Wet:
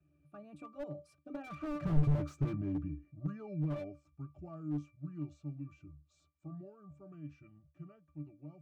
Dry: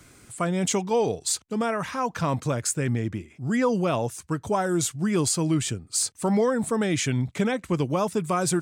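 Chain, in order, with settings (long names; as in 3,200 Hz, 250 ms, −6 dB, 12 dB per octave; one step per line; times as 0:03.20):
source passing by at 0:02.10, 57 m/s, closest 8.6 metres
resonances in every octave D, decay 0.19 s
slew-rate limiting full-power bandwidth 1.3 Hz
level +15 dB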